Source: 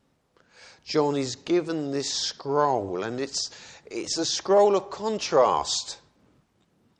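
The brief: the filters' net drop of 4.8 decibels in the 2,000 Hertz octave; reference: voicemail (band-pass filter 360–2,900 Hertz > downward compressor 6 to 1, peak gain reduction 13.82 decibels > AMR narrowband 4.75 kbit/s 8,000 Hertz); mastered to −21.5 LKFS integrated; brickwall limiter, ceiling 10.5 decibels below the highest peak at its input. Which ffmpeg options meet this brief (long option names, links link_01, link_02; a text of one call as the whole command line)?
ffmpeg -i in.wav -af "equalizer=frequency=2000:width_type=o:gain=-5.5,alimiter=limit=-19dB:level=0:latency=1,highpass=360,lowpass=2900,acompressor=threshold=-39dB:ratio=6,volume=23dB" -ar 8000 -c:a libopencore_amrnb -b:a 4750 out.amr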